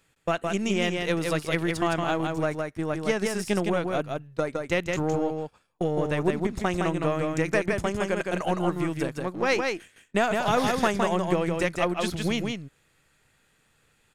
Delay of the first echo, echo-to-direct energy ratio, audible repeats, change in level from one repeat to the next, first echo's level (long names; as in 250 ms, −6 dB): 163 ms, −4.0 dB, 1, repeats not evenly spaced, −4.0 dB